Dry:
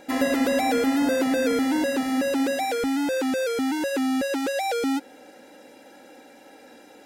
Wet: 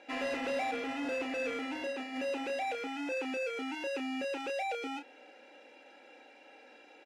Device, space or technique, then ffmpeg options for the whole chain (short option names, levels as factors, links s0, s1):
intercom: -filter_complex "[0:a]asettb=1/sr,asplit=3[s0][s1][s2];[s0]atrim=end=0.714[s3];[s1]atrim=start=0.71:end=2.16,asetpts=PTS-STARTPTS,afade=t=in:d=0.004:c=qsin,afade=t=out:st=1.446:d=0.004:c=qsin,agate=range=0.0224:threshold=0.0891:ratio=3:detection=peak[s4];[s2]atrim=start=2.156[s5];[s3][s4]acrossfade=d=0.004:c1=hsin:c2=qsin[s6];[s6][s5]acrossfade=d=0.004:c1=qsin:c2=hsin,highpass=380,lowpass=4400,equalizer=f=2600:t=o:w=0.36:g=11,asoftclip=type=tanh:threshold=0.0841,asplit=2[s7][s8];[s8]adelay=31,volume=0.422[s9];[s7][s9]amix=inputs=2:normalize=0,volume=0.398"